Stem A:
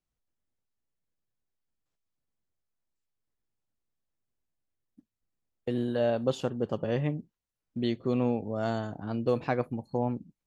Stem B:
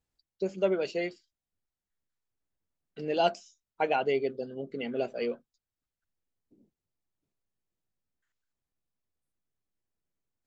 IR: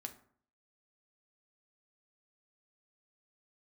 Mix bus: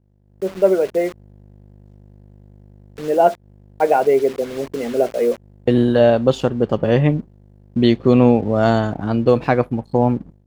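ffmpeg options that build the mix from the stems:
-filter_complex "[0:a]aeval=exprs='val(0)+0.00178*(sin(2*PI*50*n/s)+sin(2*PI*2*50*n/s)/2+sin(2*PI*3*50*n/s)/3+sin(2*PI*4*50*n/s)/4+sin(2*PI*5*50*n/s)/5)':channel_layout=same,aeval=exprs='sgn(val(0))*max(abs(val(0))-0.00112,0)':channel_layout=same,volume=3dB[link_01];[1:a]adynamicequalizer=threshold=0.0112:dfrequency=530:dqfactor=0.75:tfrequency=530:tqfactor=0.75:attack=5:release=100:ratio=0.375:range=3.5:mode=boostabove:tftype=bell,lowpass=frequency=2000:width=0.5412,lowpass=frequency=2000:width=1.3066,acrusher=bits=6:mix=0:aa=0.000001,volume=-6.5dB,asplit=2[link_02][link_03];[link_03]apad=whole_len=461410[link_04];[link_01][link_04]sidechaincompress=threshold=-43dB:ratio=6:attack=16:release=138[link_05];[link_05][link_02]amix=inputs=2:normalize=0,highshelf=frequency=6300:gain=-6,dynaudnorm=framelen=240:gausssize=3:maxgain=15dB"

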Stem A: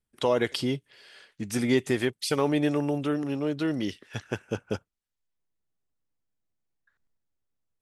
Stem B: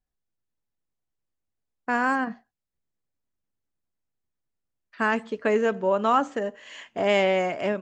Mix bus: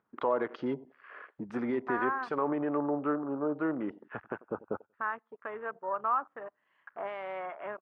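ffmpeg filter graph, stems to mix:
ffmpeg -i stem1.wav -i stem2.wav -filter_complex "[0:a]alimiter=limit=-17.5dB:level=0:latency=1:release=36,acompressor=mode=upward:threshold=-29dB:ratio=2.5,volume=-3dB,asplit=2[link_01][link_02];[link_02]volume=-18.5dB[link_03];[1:a]tiltshelf=frequency=860:gain=-8.5,alimiter=limit=-13.5dB:level=0:latency=1:release=305,aeval=exprs='sgn(val(0))*max(abs(val(0))-0.00106,0)':channel_layout=same,volume=-12dB[link_04];[link_03]aecho=0:1:93|186|279|372|465:1|0.38|0.144|0.0549|0.0209[link_05];[link_01][link_04][link_05]amix=inputs=3:normalize=0,highpass=240,afwtdn=0.00562,lowpass=frequency=1200:width_type=q:width=2.6" out.wav

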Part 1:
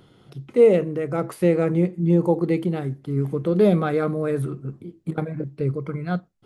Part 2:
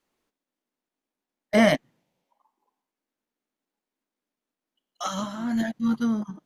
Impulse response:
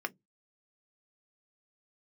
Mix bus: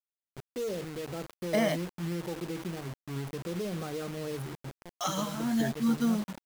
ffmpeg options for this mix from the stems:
-filter_complex "[0:a]acontrast=22,alimiter=limit=-10.5dB:level=0:latency=1:release=76,volume=-17dB[link_01];[1:a]lowshelf=frequency=150:gain=-11,alimiter=limit=-17dB:level=0:latency=1:release=353,acontrast=56,volume=-5.5dB[link_02];[link_01][link_02]amix=inputs=2:normalize=0,equalizer=frequency=1600:width_type=o:width=1.6:gain=-4.5,acrusher=bits=6:mix=0:aa=0.000001"

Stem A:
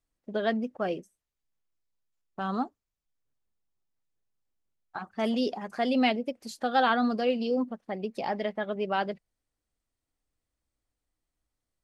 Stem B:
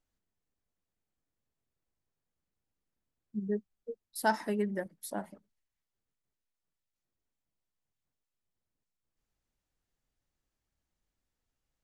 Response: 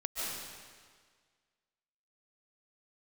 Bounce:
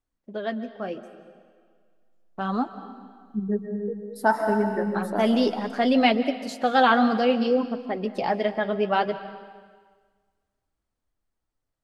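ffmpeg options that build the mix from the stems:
-filter_complex "[0:a]volume=0.5dB,asplit=2[link_01][link_02];[link_02]volume=-15dB[link_03];[1:a]highshelf=frequency=1800:width_type=q:width=1.5:gain=-8.5,volume=-1dB,asplit=2[link_04][link_05];[link_05]volume=-4.5dB[link_06];[2:a]atrim=start_sample=2205[link_07];[link_03][link_06]amix=inputs=2:normalize=0[link_08];[link_08][link_07]afir=irnorm=-1:irlink=0[link_09];[link_01][link_04][link_09]amix=inputs=3:normalize=0,dynaudnorm=framelen=280:gausssize=17:maxgain=11dB,highshelf=frequency=6300:gain=-5,flanger=delay=2.5:depth=8.2:regen=-57:speed=0.63:shape=triangular"

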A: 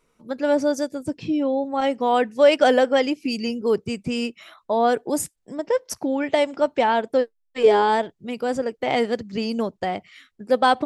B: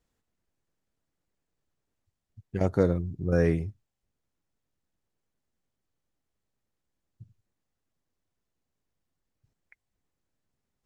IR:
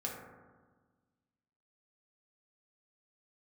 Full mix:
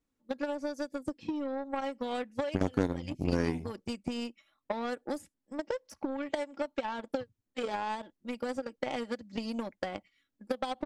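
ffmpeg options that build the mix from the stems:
-filter_complex "[0:a]agate=range=-13dB:threshold=-39dB:ratio=16:detection=peak,aecho=1:1:3.6:0.73,acompressor=threshold=-21dB:ratio=6,volume=-5.5dB[link_01];[1:a]equalizer=frequency=270:width_type=o:width=0.45:gain=14.5,volume=1dB,asplit=2[link_02][link_03];[link_03]apad=whole_len=478978[link_04];[link_01][link_04]sidechaincompress=threshold=-23dB:ratio=5:attack=16:release=254[link_05];[link_05][link_02]amix=inputs=2:normalize=0,acrossover=split=1800|4000[link_06][link_07][link_08];[link_06]acompressor=threshold=-28dB:ratio=4[link_09];[link_07]acompressor=threshold=-47dB:ratio=4[link_10];[link_08]acompressor=threshold=-48dB:ratio=4[link_11];[link_09][link_10][link_11]amix=inputs=3:normalize=0,aeval=exprs='0.224*(cos(1*acos(clip(val(0)/0.224,-1,1)))-cos(1*PI/2))+0.0501*(cos(5*acos(clip(val(0)/0.224,-1,1)))-cos(5*PI/2))+0.0562*(cos(7*acos(clip(val(0)/0.224,-1,1)))-cos(7*PI/2))':channel_layout=same"

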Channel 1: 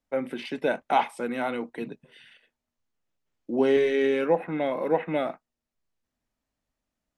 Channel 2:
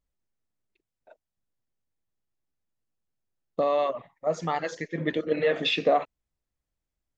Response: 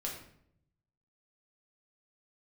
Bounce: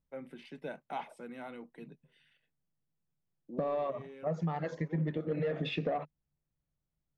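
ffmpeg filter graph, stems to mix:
-filter_complex "[0:a]highpass=140,volume=-16.5dB[link_01];[1:a]lowpass=frequency=1200:poles=1,asoftclip=type=tanh:threshold=-17dB,volume=-2.5dB,asplit=2[link_02][link_03];[link_03]apad=whole_len=316500[link_04];[link_01][link_04]sidechaincompress=threshold=-39dB:ratio=5:attack=16:release=1320[link_05];[link_05][link_02]amix=inputs=2:normalize=0,equalizer=frequency=150:width_type=o:width=0.62:gain=13.5,acompressor=threshold=-30dB:ratio=5"

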